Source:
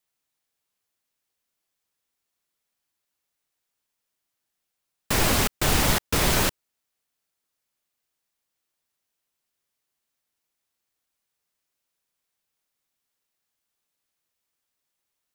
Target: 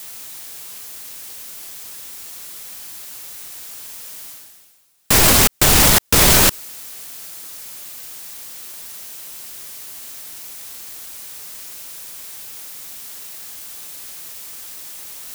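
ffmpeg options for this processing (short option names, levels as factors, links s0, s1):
-af "highshelf=f=4700:g=8,areverse,acompressor=mode=upward:threshold=0.0398:ratio=2.5,areverse,alimiter=level_in=5.96:limit=0.891:release=50:level=0:latency=1,volume=0.891"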